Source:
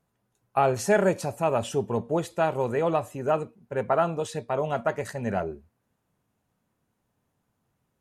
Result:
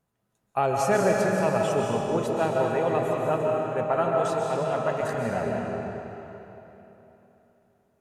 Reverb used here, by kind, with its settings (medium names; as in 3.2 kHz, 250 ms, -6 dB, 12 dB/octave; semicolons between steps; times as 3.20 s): algorithmic reverb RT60 3.4 s, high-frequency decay 0.85×, pre-delay 100 ms, DRR -1.5 dB; trim -2.5 dB